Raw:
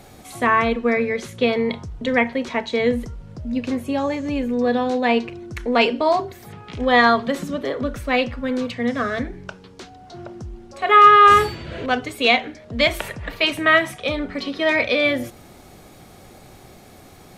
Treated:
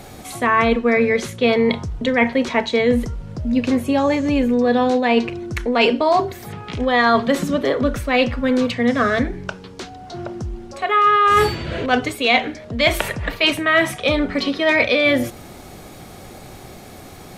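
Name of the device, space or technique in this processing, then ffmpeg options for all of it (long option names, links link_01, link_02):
compression on the reversed sound: -af "areverse,acompressor=threshold=-18dB:ratio=12,areverse,volume=6.5dB"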